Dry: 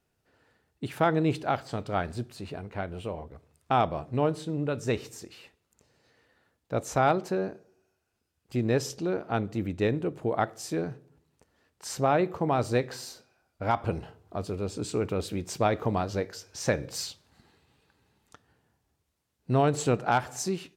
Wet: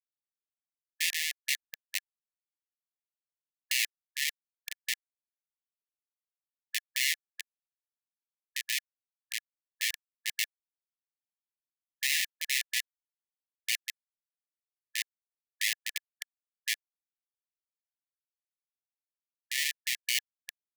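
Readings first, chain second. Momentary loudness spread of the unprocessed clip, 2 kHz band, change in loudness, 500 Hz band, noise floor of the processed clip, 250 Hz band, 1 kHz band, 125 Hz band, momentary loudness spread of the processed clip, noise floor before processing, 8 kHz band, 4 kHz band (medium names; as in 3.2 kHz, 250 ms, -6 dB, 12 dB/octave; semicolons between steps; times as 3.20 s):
13 LU, +3.5 dB, -3.0 dB, under -40 dB, under -85 dBFS, under -40 dB, under -40 dB, under -40 dB, 14 LU, -78 dBFS, +4.5 dB, +8.0 dB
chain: low-pass 2.5 kHz 6 dB/octave; in parallel at +3 dB: level held to a coarse grid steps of 13 dB; on the sum: Schmitt trigger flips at -17.5 dBFS; brick-wall FIR high-pass 1.7 kHz; trim +8 dB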